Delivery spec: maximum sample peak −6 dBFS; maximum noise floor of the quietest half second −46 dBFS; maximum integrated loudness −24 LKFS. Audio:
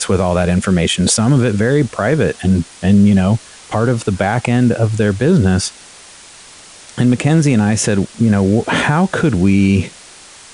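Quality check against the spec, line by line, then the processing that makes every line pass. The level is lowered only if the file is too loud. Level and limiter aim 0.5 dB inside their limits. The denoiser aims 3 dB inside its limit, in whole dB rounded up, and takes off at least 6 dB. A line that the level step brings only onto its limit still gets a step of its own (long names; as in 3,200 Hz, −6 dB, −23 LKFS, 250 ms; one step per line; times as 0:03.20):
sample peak −3.0 dBFS: out of spec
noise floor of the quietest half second −39 dBFS: out of spec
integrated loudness −14.5 LKFS: out of spec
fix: level −10 dB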